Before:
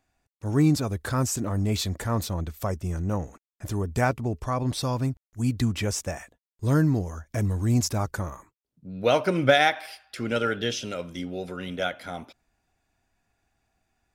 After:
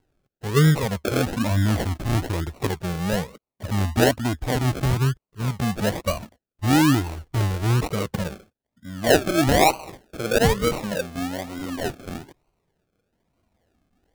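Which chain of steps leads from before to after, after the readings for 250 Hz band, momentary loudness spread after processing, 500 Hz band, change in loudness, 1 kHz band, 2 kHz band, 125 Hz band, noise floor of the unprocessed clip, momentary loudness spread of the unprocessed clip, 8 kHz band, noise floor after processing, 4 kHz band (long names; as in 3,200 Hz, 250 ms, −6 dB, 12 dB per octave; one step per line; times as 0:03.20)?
+3.5 dB, 14 LU, +3.5 dB, +3.5 dB, +3.5 dB, +2.5 dB, +3.5 dB, below −85 dBFS, 13 LU, +2.0 dB, below −85 dBFS, +3.0 dB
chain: rippled gain that drifts along the octave scale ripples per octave 0.69, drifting +0.41 Hz, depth 21 dB
sample-and-hold swept by an LFO 36×, swing 60% 1.1 Hz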